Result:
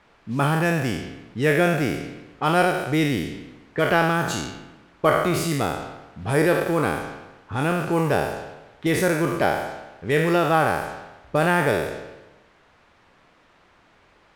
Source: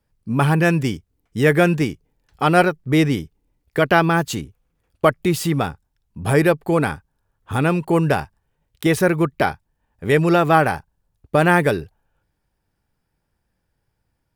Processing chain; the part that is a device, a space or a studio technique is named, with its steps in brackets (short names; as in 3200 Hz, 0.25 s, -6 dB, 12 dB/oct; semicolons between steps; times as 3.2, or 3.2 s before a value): spectral trails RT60 1.06 s; cassette deck with a dynamic noise filter (white noise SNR 23 dB; low-pass opened by the level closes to 1500 Hz, open at -13 dBFS); gain -6 dB